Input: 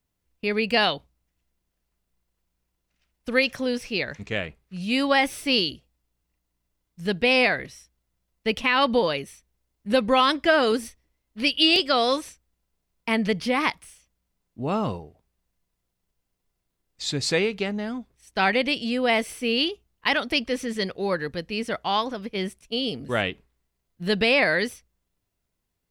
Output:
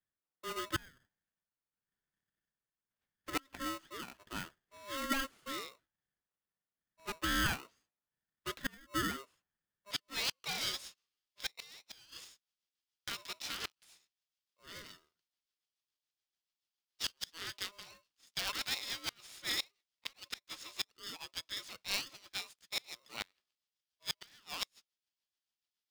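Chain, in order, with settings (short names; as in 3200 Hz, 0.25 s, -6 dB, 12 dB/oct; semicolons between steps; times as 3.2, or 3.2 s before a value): band-pass 920 Hz, Q 3.6, from 9.91 s 4100 Hz; rotary speaker horn 0.8 Hz, later 7 Hz, at 11.4; flipped gate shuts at -24 dBFS, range -30 dB; polarity switched at an audio rate 810 Hz; gain +2.5 dB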